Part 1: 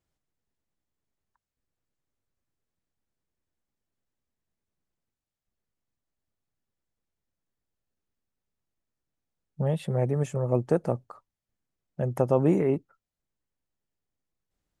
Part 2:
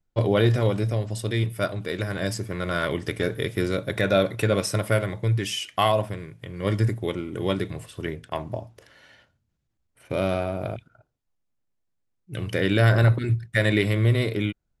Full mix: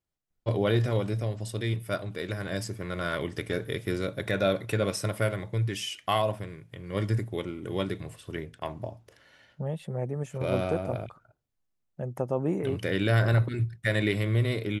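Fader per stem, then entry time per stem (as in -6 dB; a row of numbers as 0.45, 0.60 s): -6.0, -5.0 dB; 0.00, 0.30 s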